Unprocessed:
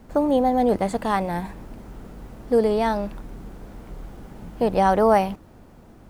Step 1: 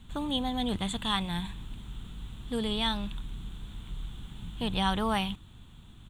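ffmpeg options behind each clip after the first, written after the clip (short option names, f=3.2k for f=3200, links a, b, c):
-af "firequalizer=gain_entry='entry(120,0);entry(260,-10);entry(560,-21);entry(1000,-7);entry(2100,-5);entry(3500,15);entry(4900,-14);entry(7400,2);entry(13000,-8)':delay=0.05:min_phase=1"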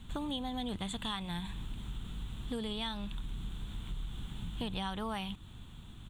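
-af "acompressor=threshold=-36dB:ratio=6,volume=1.5dB"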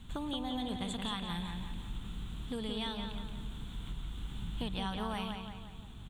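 -filter_complex "[0:a]asplit=2[a][b];[b]adelay=174,lowpass=f=4.8k:p=1,volume=-5dB,asplit=2[c][d];[d]adelay=174,lowpass=f=4.8k:p=1,volume=0.49,asplit=2[e][f];[f]adelay=174,lowpass=f=4.8k:p=1,volume=0.49,asplit=2[g][h];[h]adelay=174,lowpass=f=4.8k:p=1,volume=0.49,asplit=2[i][j];[j]adelay=174,lowpass=f=4.8k:p=1,volume=0.49,asplit=2[k][l];[l]adelay=174,lowpass=f=4.8k:p=1,volume=0.49[m];[a][c][e][g][i][k][m]amix=inputs=7:normalize=0,volume=-1dB"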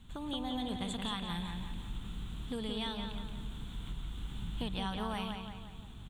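-af "dynaudnorm=f=160:g=3:m=5dB,volume=-5dB"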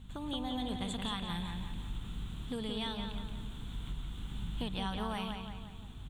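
-af "aeval=exprs='val(0)+0.00355*(sin(2*PI*50*n/s)+sin(2*PI*2*50*n/s)/2+sin(2*PI*3*50*n/s)/3+sin(2*PI*4*50*n/s)/4+sin(2*PI*5*50*n/s)/5)':c=same"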